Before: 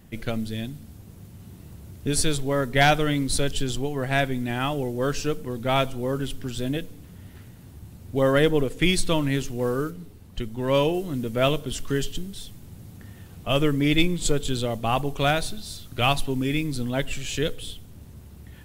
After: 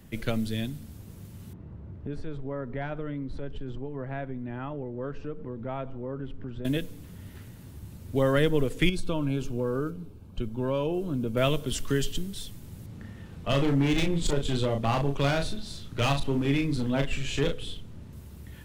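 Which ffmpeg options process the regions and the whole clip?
ffmpeg -i in.wav -filter_complex "[0:a]asettb=1/sr,asplit=3[link_01][link_02][link_03];[link_01]atrim=end=1.534[link_04];[link_02]atrim=start=1.53:end=6.65,asetpts=PTS-STARTPTS,afade=type=in:duration=0.004:curve=qsin,afade=type=out:start_time=5.116:duration=0.004:curve=qsin,lowpass=1300,acompressor=threshold=-35dB:ratio=2.5:attack=3.2:release=140:knee=1:detection=peak[link_05];[link_03]atrim=start=6.646[link_06];[link_04][link_05]acrossfade=duration=0.004:curve1=hsin:curve2=qsin[link_07];[link_07][link_06]acrossfade=duration=0.004:curve1=qsin:curve2=hsin,asettb=1/sr,asplit=3[link_08][link_09][link_10];[link_08]atrim=end=8.894[link_11];[link_09]atrim=start=8.89:end=11.37,asetpts=PTS-STARTPTS,afade=type=in:duration=0.004:curve=qsin,afade=type=out:start_time=2.476:duration=0.004:curve=qsin,acompressor=threshold=-24dB:ratio=3:attack=3.2:release=140:knee=1:detection=peak,asuperstop=centerf=1900:order=20:qfactor=4.6,highshelf=frequency=2500:gain=-11.5[link_12];[link_10]atrim=start=11.366[link_13];[link_11][link_12]acrossfade=duration=0.004:curve1=hsin:curve2=qsin[link_14];[link_14][link_13]acrossfade=duration=0.004:curve1=qsin:curve2=hsin,asettb=1/sr,asplit=3[link_15][link_16][link_17];[link_15]atrim=end=12.864[link_18];[link_16]atrim=start=12.86:end=18.13,asetpts=PTS-STARTPTS,afade=type=in:duration=0.004:curve=qsin,afade=type=out:start_time=5.266:duration=0.004:curve=qsin,aemphasis=mode=reproduction:type=50fm,asoftclip=type=hard:threshold=-20dB,asplit=2[link_19][link_20];[link_20]adelay=36,volume=-5.5dB[link_21];[link_19][link_21]amix=inputs=2:normalize=0,atrim=end_sample=232407[link_22];[link_17]atrim=start=18.126[link_23];[link_18][link_22]acrossfade=duration=0.004:curve1=hsin:curve2=qsin[link_24];[link_24][link_23]acrossfade=duration=0.004:curve1=qsin:curve2=hsin,bandreject=frequency=740:width=12,acrossover=split=170[link_25][link_26];[link_26]acompressor=threshold=-24dB:ratio=2[link_27];[link_25][link_27]amix=inputs=2:normalize=0" out.wav

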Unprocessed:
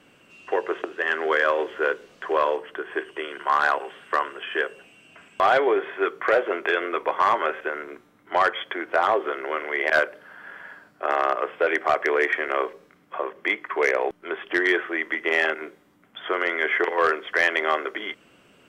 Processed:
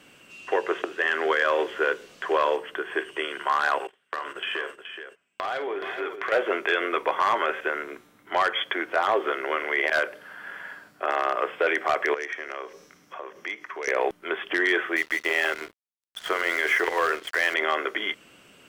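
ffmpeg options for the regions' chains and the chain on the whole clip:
ffmpeg -i in.wav -filter_complex "[0:a]asettb=1/sr,asplit=3[link_01][link_02][link_03];[link_01]atrim=end=3.874[link_04];[link_02]atrim=start=3.87:end=6.32,asetpts=PTS-STARTPTS,afade=type=in:duration=0.004:curve=qsin,afade=type=out:start_time=2.446:duration=0.004:curve=qsin,agate=range=-27dB:threshold=-40dB:ratio=16:release=100:detection=peak,acompressor=threshold=-29dB:ratio=5:attack=3.2:release=140:knee=1:detection=peak,aecho=1:1:49|424:0.282|0.355,atrim=end_sample=108045[link_05];[link_03]atrim=start=6.316[link_06];[link_04][link_05]acrossfade=duration=0.004:curve1=hsin:curve2=qsin[link_07];[link_07][link_06]acrossfade=duration=0.004:curve1=qsin:curve2=hsin,asettb=1/sr,asplit=3[link_08][link_09][link_10];[link_08]atrim=end=12.144[link_11];[link_09]atrim=start=12.14:end=13.88,asetpts=PTS-STARTPTS,afade=type=in:duration=0.004:curve=qsin,afade=type=out:start_time=1.736:duration=0.004:curve=qsin,acompressor=threshold=-42dB:ratio=2:attack=3.2:release=140:knee=1:detection=peak,equalizer=frequency=5800:width_type=o:width=0.38:gain=13[link_12];[link_10]atrim=start=13.876[link_13];[link_11][link_12]acrossfade=duration=0.004:curve1=hsin:curve2=qsin[link_14];[link_14][link_13]acrossfade=duration=0.004:curve1=qsin:curve2=hsin,asettb=1/sr,asplit=3[link_15][link_16][link_17];[link_15]atrim=end=14.964[link_18];[link_16]atrim=start=14.96:end=17.54,asetpts=PTS-STARTPTS,afade=type=in:duration=0.004:curve=qsin,afade=type=out:start_time=2.576:duration=0.004:curve=qsin,bandreject=frequency=60:width_type=h:width=6,bandreject=frequency=120:width_type=h:width=6,bandreject=frequency=180:width_type=h:width=6,bandreject=frequency=240:width_type=h:width=6,bandreject=frequency=300:width_type=h:width=6,bandreject=frequency=360:width_type=h:width=6,bandreject=frequency=420:width_type=h:width=6,bandreject=frequency=480:width_type=h:width=6,aeval=exprs='sgn(val(0))*max(abs(val(0))-0.00794,0)':channel_layout=same[link_19];[link_17]atrim=start=17.536[link_20];[link_18][link_19]acrossfade=duration=0.004:curve1=hsin:curve2=qsin[link_21];[link_21][link_20]acrossfade=duration=0.004:curve1=qsin:curve2=hsin,highshelf=frequency=2400:gain=8,alimiter=limit=-12.5dB:level=0:latency=1:release=30" out.wav

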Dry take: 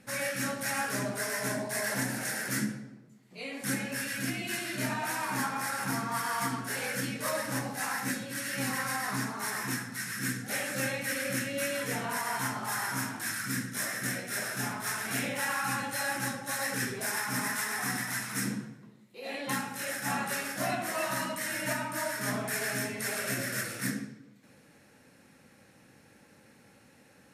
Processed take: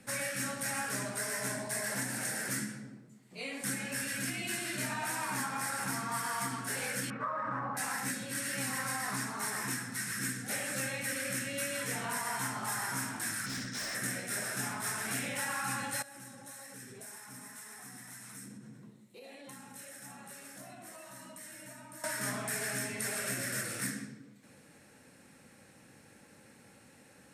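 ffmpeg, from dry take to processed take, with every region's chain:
ffmpeg -i in.wav -filter_complex "[0:a]asettb=1/sr,asplit=3[link_01][link_02][link_03];[link_01]atrim=end=7.104[link_04];[link_02]atrim=start=7.1:end=7.77,asetpts=PTS-STARTPTS,afade=type=in:duration=0.004:curve=qsin,afade=type=out:start_time=0.666:duration=0.004:curve=qsin,lowpass=frequency=1200:width_type=q:width=5.5,acompressor=threshold=-29dB:ratio=4:attack=3.2:release=140:knee=1:detection=peak[link_05];[link_03]atrim=start=7.766[link_06];[link_04][link_05]acrossfade=duration=0.004:curve1=hsin:curve2=qsin[link_07];[link_07][link_06]acrossfade=duration=0.004:curve1=qsin:curve2=hsin,asettb=1/sr,asplit=3[link_08][link_09][link_10];[link_08]atrim=end=13.464[link_11];[link_09]atrim=start=13.46:end=13.95,asetpts=PTS-STARTPTS,afade=type=in:duration=0.004:curve=qsin,afade=type=out:start_time=0.486:duration=0.004:curve=qsin,lowpass=frequency=5100:width_type=q:width=2.5,volume=35.5dB,asoftclip=hard,volume=-35.5dB[link_12];[link_10]atrim=start=13.946[link_13];[link_11][link_12]acrossfade=duration=0.004:curve1=hsin:curve2=qsin[link_14];[link_14][link_13]acrossfade=duration=0.004:curve1=qsin:curve2=hsin,asettb=1/sr,asplit=3[link_15][link_16][link_17];[link_15]atrim=end=16.024[link_18];[link_16]atrim=start=16.02:end=22.04,asetpts=PTS-STARTPTS,afade=type=in:duration=0.004:curve=qsin,afade=type=out:start_time=6.016:duration=0.004:curve=qsin,bandreject=frequency=4900:width=18,acompressor=threshold=-45dB:ratio=8:attack=3.2:release=140:knee=1:detection=peak,equalizer=frequency=1700:width_type=o:width=2.6:gain=-4.5[link_19];[link_17]atrim=start=22.036[link_20];[link_18][link_19]acrossfade=duration=0.004:curve1=hsin:curve2=qsin[link_21];[link_21][link_20]acrossfade=duration=0.004:curve1=qsin:curve2=hsin,equalizer=frequency=8400:width_type=o:width=0.37:gain=7,acrossover=split=200|870[link_22][link_23][link_24];[link_22]acompressor=threshold=-44dB:ratio=4[link_25];[link_23]acompressor=threshold=-43dB:ratio=4[link_26];[link_24]acompressor=threshold=-34dB:ratio=4[link_27];[link_25][link_26][link_27]amix=inputs=3:normalize=0" out.wav

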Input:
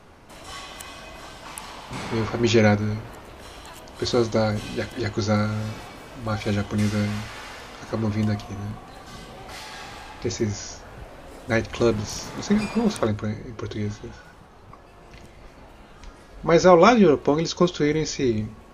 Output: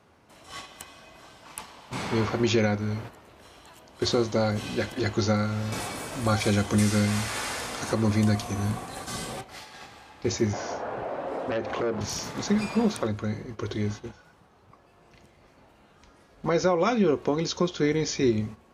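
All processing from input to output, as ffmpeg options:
ffmpeg -i in.wav -filter_complex "[0:a]asettb=1/sr,asplit=3[link_01][link_02][link_03];[link_01]atrim=end=5.724[link_04];[link_02]atrim=start=5.72:end=9.41,asetpts=PTS-STARTPTS,afade=type=in:duration=0.004:curve=qsin,afade=type=out:start_time=3.686:duration=0.004:curve=qsin,equalizer=frequency=9300:width_type=o:width=1:gain=11.5,bandreject=frequency=2900:width=24,acontrast=35[link_05];[link_03]atrim=start=9.406[link_06];[link_04][link_05]acrossfade=duration=0.004:curve1=hsin:curve2=qsin[link_07];[link_07][link_06]acrossfade=duration=0.004:curve1=qsin:curve2=hsin,asettb=1/sr,asplit=3[link_08][link_09][link_10];[link_08]atrim=end=10.534[link_11];[link_09]atrim=start=10.53:end=12.01,asetpts=PTS-STARTPTS,afade=type=in:duration=0.004:curve=qsin,afade=type=out:start_time=1.476:duration=0.004:curve=qsin,acompressor=threshold=-31dB:ratio=6:attack=3.2:release=140:knee=1:detection=peak,bandpass=frequency=620:width_type=q:width=1,aeval=exprs='0.075*sin(PI/2*3.16*val(0)/0.075)':channel_layout=same[link_12];[link_10]atrim=start=12.006[link_13];[link_11][link_12]acrossfade=duration=0.004:curve1=hsin:curve2=qsin[link_14];[link_14][link_13]acrossfade=duration=0.004:curve1=qsin:curve2=hsin,agate=range=-9dB:threshold=-36dB:ratio=16:detection=peak,highpass=73,alimiter=limit=-13dB:level=0:latency=1:release=376" out.wav

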